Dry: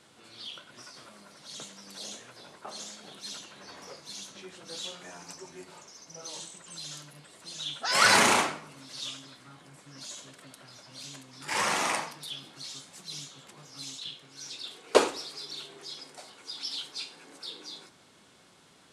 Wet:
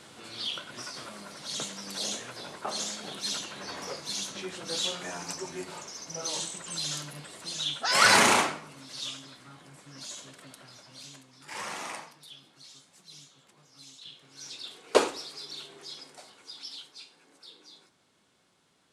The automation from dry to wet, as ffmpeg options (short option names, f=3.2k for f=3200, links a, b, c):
-af "volume=16.5dB,afade=t=out:st=7.21:d=0.77:silence=0.446684,afade=t=out:st=10.53:d=0.98:silence=0.298538,afade=t=in:st=13.96:d=0.48:silence=0.375837,afade=t=out:st=15.98:d=0.99:silence=0.375837"